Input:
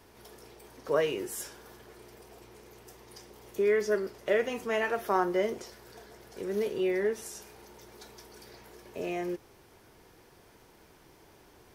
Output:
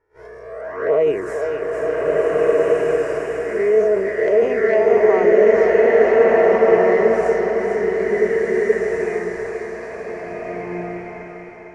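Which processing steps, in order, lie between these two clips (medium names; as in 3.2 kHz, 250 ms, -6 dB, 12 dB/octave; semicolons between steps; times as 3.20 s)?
reverse spectral sustain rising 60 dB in 1.00 s; Bessel low-pass 5.7 kHz, order 4; gate -51 dBFS, range -24 dB; transient shaper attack 0 dB, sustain +8 dB; in parallel at +1 dB: compression 5:1, threshold -39 dBFS, peak gain reduction 17 dB; on the sum: resonant high shelf 2.5 kHz -10.5 dB, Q 3; hard clipper -10 dBFS, distortion -46 dB; touch-sensitive flanger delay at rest 2.2 ms, full sweep at -18.5 dBFS; saturation -13.5 dBFS, distortion -26 dB; small resonant body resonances 450/650 Hz, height 11 dB, ringing for 55 ms; on a send: thinning echo 454 ms, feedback 48%, high-pass 320 Hz, level -6 dB; on the sum: swelling reverb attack 1720 ms, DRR -4.5 dB; trim +1.5 dB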